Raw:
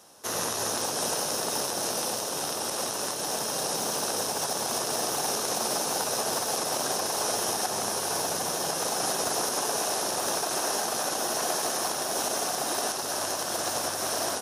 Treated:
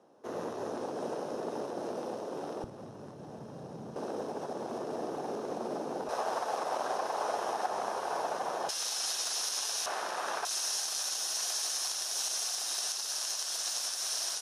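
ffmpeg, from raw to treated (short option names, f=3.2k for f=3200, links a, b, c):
-af "asetnsamples=n=441:p=0,asendcmd='2.64 bandpass f 120;3.96 bandpass f 320;6.09 bandpass f 830;8.69 bandpass f 4400;9.86 bandpass f 1400;10.45 bandpass f 5200',bandpass=f=350:t=q:w=1:csg=0"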